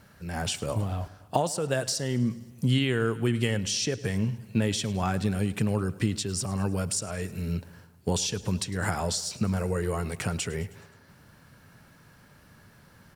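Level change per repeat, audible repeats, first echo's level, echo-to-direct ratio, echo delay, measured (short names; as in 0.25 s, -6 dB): -4.5 dB, 4, -19.0 dB, -17.0 dB, 0.105 s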